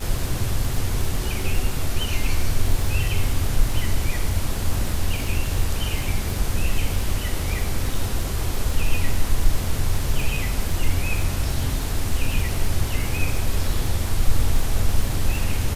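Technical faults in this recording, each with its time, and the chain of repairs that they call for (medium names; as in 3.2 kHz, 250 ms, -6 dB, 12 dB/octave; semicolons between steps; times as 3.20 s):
crackle 39 per s -25 dBFS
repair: de-click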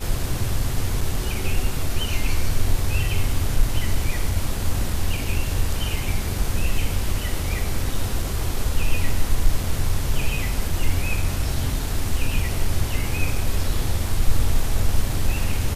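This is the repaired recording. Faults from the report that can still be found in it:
nothing left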